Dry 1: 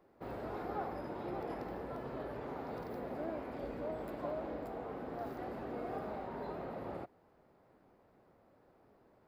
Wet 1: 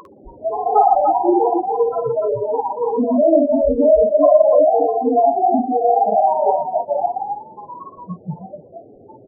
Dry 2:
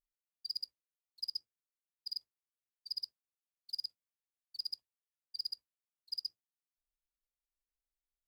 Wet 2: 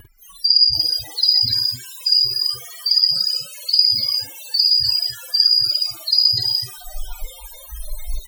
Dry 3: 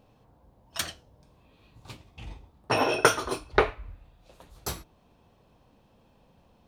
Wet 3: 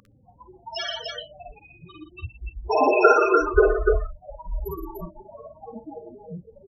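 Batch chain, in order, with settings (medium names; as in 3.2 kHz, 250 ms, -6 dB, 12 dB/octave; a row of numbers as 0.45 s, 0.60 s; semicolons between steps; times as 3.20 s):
jump at every zero crossing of -28 dBFS; Chebyshev shaper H 2 -8 dB, 4 -45 dB, 8 -28 dB, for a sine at -4 dBFS; loudest bins only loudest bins 8; on a send: multi-tap echo 52/62/119/167/295/327 ms -3/-12.5/-9/-11/-3.5/-13 dB; on the sum: spectral noise reduction 30 dB; peak normalisation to -2 dBFS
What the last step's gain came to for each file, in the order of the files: +21.0 dB, +18.0 dB, +7.0 dB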